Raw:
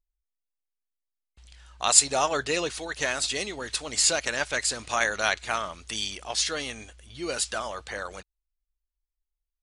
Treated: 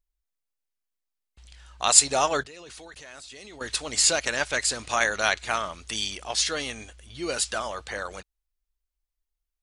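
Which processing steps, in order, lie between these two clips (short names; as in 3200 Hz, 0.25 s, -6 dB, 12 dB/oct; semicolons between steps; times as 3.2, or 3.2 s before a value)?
2.43–3.61 level quantiser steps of 23 dB; gain +1.5 dB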